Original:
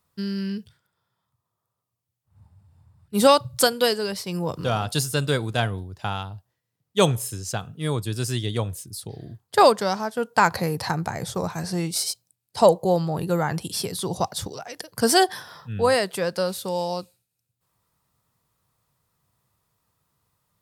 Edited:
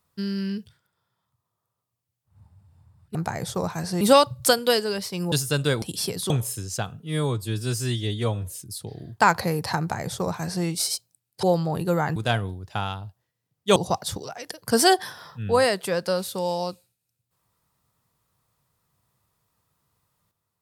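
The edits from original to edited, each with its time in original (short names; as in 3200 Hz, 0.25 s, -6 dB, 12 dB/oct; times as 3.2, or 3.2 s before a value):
4.46–4.95 cut
5.45–7.05 swap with 13.58–14.06
7.75–8.81 stretch 1.5×
9.42–10.36 cut
10.95–11.81 copy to 3.15
12.59–12.85 cut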